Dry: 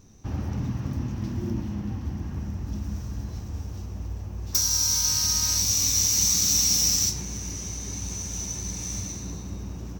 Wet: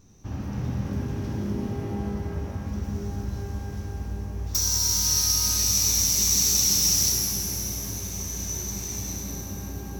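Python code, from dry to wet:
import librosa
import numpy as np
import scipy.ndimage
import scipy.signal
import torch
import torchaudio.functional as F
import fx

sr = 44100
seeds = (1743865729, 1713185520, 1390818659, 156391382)

y = fx.rev_shimmer(x, sr, seeds[0], rt60_s=2.9, semitones=12, shimmer_db=-8, drr_db=-0.5)
y = y * librosa.db_to_amplitude(-3.0)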